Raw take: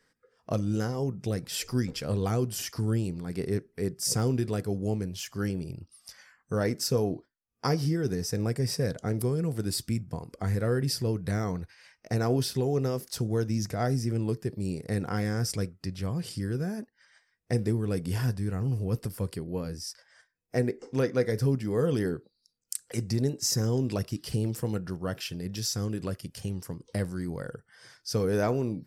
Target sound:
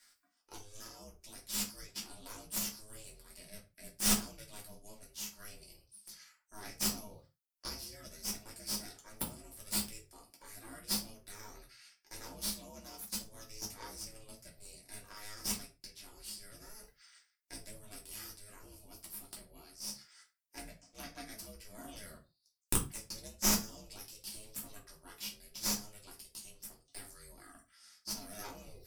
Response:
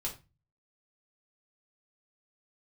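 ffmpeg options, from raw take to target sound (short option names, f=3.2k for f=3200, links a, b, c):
-filter_complex "[0:a]aderivative,aeval=exprs='0.282*(cos(1*acos(clip(val(0)/0.282,-1,1)))-cos(1*PI/2))+0.0501*(cos(2*acos(clip(val(0)/0.282,-1,1)))-cos(2*PI/2))+0.0282*(cos(3*acos(clip(val(0)/0.282,-1,1)))-cos(3*PI/2))+0.0501*(cos(6*acos(clip(val(0)/0.282,-1,1)))-cos(6*PI/2))':c=same,aeval=exprs='val(0)*sin(2*PI*210*n/s)':c=same,areverse,acompressor=mode=upward:threshold=-53dB:ratio=2.5,areverse[a];[1:a]atrim=start_sample=2205,afade=t=out:st=0.22:d=0.01,atrim=end_sample=10143[b];[a][b]afir=irnorm=-1:irlink=0,volume=3.5dB"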